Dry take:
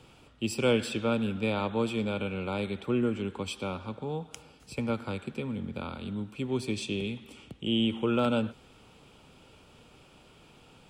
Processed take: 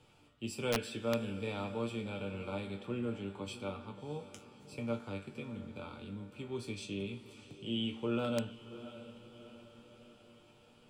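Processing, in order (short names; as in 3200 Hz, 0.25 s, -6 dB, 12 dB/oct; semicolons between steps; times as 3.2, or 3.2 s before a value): resonator bank G2 minor, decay 0.21 s; diffused feedback echo 0.634 s, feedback 52%, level -14.5 dB; wrapped overs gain 25 dB; gain +2 dB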